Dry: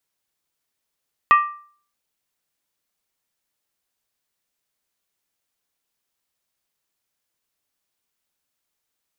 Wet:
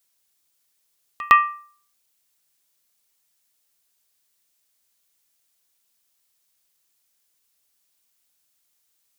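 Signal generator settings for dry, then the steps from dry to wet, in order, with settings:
struck skin, lowest mode 1,180 Hz, decay 0.48 s, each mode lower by 8 dB, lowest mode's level −7 dB
high-shelf EQ 3,100 Hz +11 dB
echo ahead of the sound 109 ms −20 dB

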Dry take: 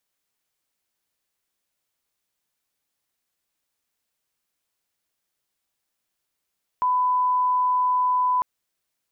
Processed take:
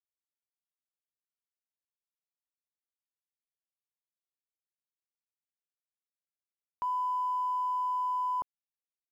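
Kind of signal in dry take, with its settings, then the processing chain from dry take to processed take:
line-up tone −18 dBFS 1.60 s
treble cut that deepens with the level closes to 920 Hz, closed at −20.5 dBFS
brickwall limiter −27.5 dBFS
dead-zone distortion −58 dBFS

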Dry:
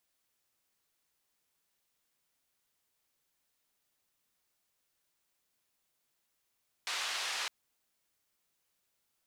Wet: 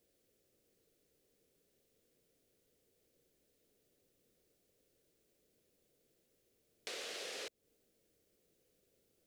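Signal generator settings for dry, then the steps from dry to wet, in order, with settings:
band-limited noise 910–4,500 Hz, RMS −36.5 dBFS 0.61 s
low shelf with overshoot 670 Hz +12 dB, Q 3
downward compressor 3 to 1, threshold −45 dBFS

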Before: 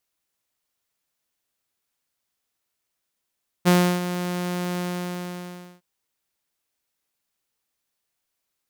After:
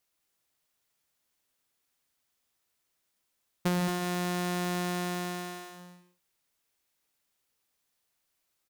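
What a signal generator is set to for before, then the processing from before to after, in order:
note with an ADSR envelope saw 178 Hz, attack 28 ms, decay 320 ms, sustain −12 dB, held 1.13 s, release 1,030 ms −10.5 dBFS
downward compressor 8 to 1, threshold −27 dBFS
on a send: single-tap delay 222 ms −7.5 dB
on the sum: reverb whose tail is shaped and stops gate 180 ms rising, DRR 10 dB

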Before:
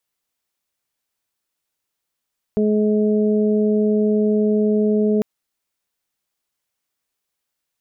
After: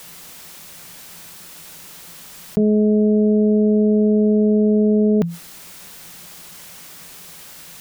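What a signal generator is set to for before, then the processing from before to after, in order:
steady harmonic partials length 2.65 s, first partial 212 Hz, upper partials −1.5/−12 dB, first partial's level −16.5 dB
parametric band 170 Hz +13.5 dB 0.27 octaves
envelope flattener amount 70%

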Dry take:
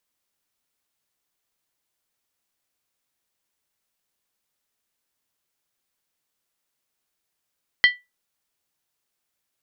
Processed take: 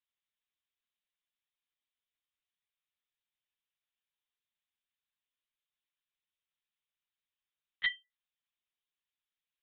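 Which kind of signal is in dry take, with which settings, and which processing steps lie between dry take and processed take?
struck skin, lowest mode 1,970 Hz, decay 0.21 s, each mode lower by 7 dB, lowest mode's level −8 dB
first difference
one-pitch LPC vocoder at 8 kHz 170 Hz

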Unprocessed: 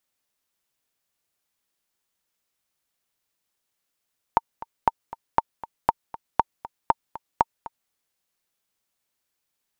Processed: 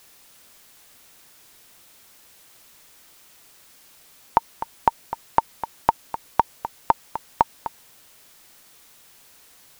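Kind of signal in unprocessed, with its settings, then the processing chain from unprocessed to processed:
click track 237 BPM, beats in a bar 2, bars 7, 914 Hz, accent 17.5 dB −3.5 dBFS
background noise white −61 dBFS
boost into a limiter +8.5 dB

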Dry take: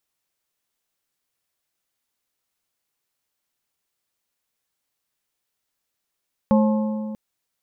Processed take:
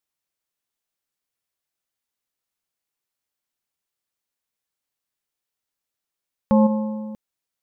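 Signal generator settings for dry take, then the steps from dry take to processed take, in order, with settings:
struck metal plate, length 0.64 s, lowest mode 215 Hz, modes 4, decay 2.36 s, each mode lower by 5.5 dB, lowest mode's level −13 dB
in parallel at +3 dB: output level in coarse steps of 19 dB
on the sum: brickwall limiter −8 dBFS
expander for the loud parts 1.5 to 1, over −30 dBFS

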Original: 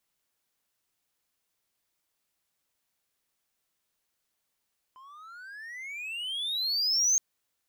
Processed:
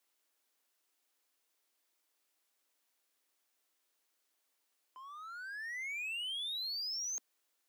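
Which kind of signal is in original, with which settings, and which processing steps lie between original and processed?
pitch glide with a swell triangle, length 2.22 s, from 1,020 Hz, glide +32 semitones, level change +28.5 dB, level −18 dB
Butterworth high-pass 250 Hz 48 dB per octave
reversed playback
downward compressor 12 to 1, threshold −37 dBFS
reversed playback
hard clipping −36 dBFS

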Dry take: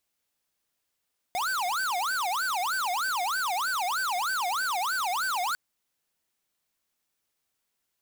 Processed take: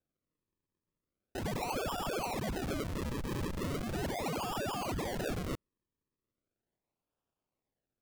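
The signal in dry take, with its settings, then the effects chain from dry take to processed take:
siren wail 704–1,550 Hz 3.2 per second square −28.5 dBFS 4.20 s
dynamic equaliser 4,000 Hz, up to +6 dB, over −53 dBFS, Q 5.3
transistor ladder low-pass 5,400 Hz, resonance 50%
sample-and-hold swept by an LFO 42×, swing 100% 0.38 Hz

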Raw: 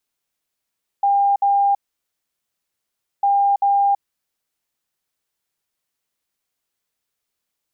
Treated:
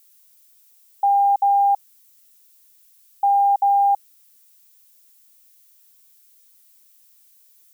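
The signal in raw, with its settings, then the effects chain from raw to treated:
beeps in groups sine 801 Hz, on 0.33 s, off 0.06 s, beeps 2, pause 1.48 s, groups 2, −13 dBFS
background noise violet −55 dBFS

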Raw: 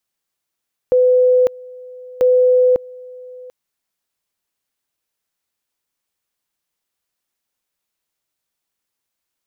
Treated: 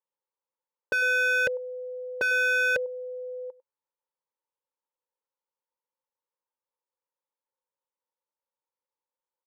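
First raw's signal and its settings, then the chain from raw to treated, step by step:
tone at two levels in turn 503 Hz −9 dBFS, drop 23.5 dB, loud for 0.55 s, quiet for 0.74 s, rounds 2
pair of resonant band-passes 690 Hz, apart 0.77 octaves
slap from a distant wall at 17 metres, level −20 dB
wave folding −18.5 dBFS

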